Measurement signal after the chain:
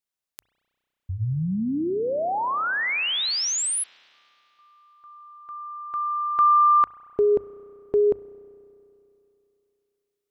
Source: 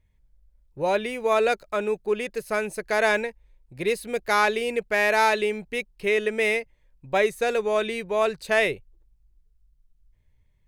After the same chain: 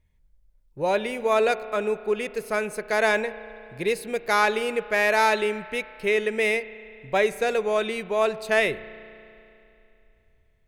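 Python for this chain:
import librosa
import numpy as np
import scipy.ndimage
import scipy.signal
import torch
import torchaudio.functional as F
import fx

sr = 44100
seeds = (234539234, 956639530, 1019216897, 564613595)

y = fx.hum_notches(x, sr, base_hz=50, count=2)
y = fx.rev_spring(y, sr, rt60_s=2.9, pass_ms=(32,), chirp_ms=75, drr_db=15.0)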